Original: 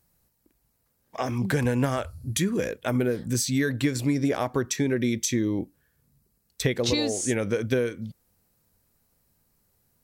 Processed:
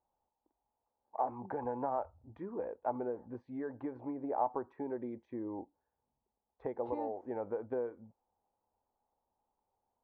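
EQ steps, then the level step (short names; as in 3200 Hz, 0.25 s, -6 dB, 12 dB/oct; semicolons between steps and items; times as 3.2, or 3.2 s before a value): ladder low-pass 920 Hz, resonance 75%; bell 150 Hz -12 dB 0.79 oct; low shelf 190 Hz -10 dB; +1.0 dB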